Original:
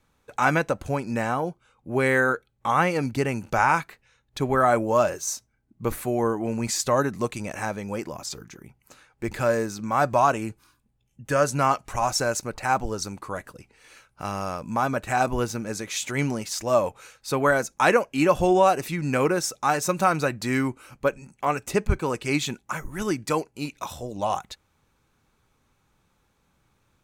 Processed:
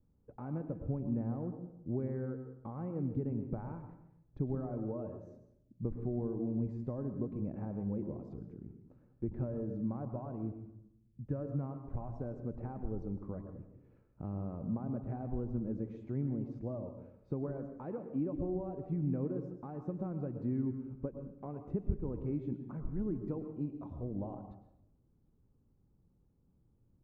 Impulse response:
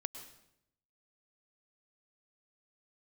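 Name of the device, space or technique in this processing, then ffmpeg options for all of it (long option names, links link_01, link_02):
television next door: -filter_complex "[0:a]acompressor=threshold=-28dB:ratio=5,lowpass=300[link_01];[1:a]atrim=start_sample=2205[link_02];[link_01][link_02]afir=irnorm=-1:irlink=0,volume=1dB"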